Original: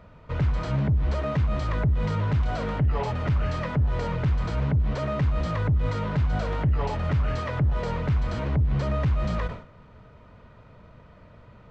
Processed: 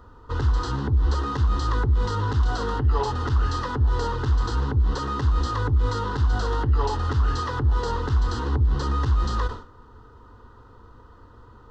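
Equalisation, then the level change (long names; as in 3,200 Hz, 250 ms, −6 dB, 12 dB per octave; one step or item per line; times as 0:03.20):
dynamic equaliser 4,400 Hz, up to +7 dB, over −55 dBFS, Q 0.73
phaser with its sweep stopped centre 620 Hz, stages 6
+5.5 dB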